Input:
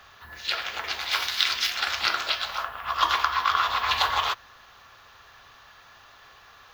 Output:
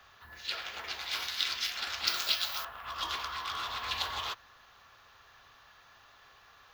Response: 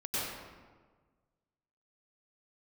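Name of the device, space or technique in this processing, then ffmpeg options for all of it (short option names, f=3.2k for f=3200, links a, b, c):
one-band saturation: -filter_complex "[0:a]asettb=1/sr,asplit=3[a][b][c];[a]atrim=end=2.074[d];[b]atrim=start=2.07:end=2.65,asetpts=PTS-STARTPTS,afade=t=in:d=0.004:c=qsin,afade=t=out:st=0.576:d=0.004:c=qsin,aemphasis=mode=production:type=75kf[e];[c]atrim=start=2.646[f];[d][e]acrossfade=d=0.004:c1=hsin:c2=qsin[g];[g][f]acrossfade=d=0.004:c1=qsin:c2=hsin,acrossover=split=470|2600[h][i][j];[i]asoftclip=type=tanh:threshold=-30.5dB[k];[h][k][j]amix=inputs=3:normalize=0,volume=-7dB"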